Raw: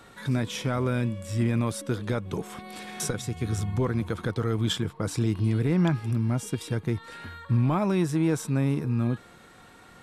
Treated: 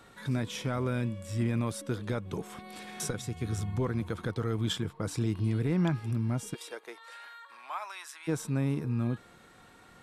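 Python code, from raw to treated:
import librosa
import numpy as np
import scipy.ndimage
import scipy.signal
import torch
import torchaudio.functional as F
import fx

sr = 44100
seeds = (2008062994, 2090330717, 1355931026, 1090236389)

y = fx.highpass(x, sr, hz=fx.line((6.53, 390.0), (8.27, 1200.0)), slope=24, at=(6.53, 8.27), fade=0.02)
y = y * librosa.db_to_amplitude(-4.5)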